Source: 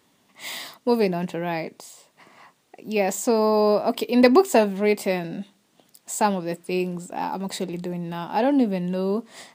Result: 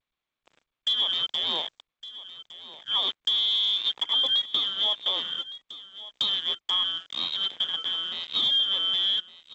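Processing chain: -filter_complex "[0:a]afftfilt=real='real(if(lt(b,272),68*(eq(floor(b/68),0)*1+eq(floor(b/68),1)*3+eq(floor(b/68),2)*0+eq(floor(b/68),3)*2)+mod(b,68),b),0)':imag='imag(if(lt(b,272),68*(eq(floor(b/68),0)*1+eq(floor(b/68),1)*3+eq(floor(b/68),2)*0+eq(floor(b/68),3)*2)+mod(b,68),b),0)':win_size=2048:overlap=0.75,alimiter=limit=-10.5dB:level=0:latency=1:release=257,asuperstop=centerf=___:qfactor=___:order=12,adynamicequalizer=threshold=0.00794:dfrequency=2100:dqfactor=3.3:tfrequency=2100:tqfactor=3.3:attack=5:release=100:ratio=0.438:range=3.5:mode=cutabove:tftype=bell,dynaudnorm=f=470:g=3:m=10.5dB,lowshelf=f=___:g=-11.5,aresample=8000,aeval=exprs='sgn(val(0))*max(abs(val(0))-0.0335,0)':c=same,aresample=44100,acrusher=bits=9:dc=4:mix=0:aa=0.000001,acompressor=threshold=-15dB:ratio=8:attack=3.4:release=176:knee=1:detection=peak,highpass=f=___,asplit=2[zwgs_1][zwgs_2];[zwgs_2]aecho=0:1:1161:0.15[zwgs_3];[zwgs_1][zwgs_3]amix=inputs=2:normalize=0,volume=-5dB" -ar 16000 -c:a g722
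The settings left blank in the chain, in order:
1700, 1.8, 220, 140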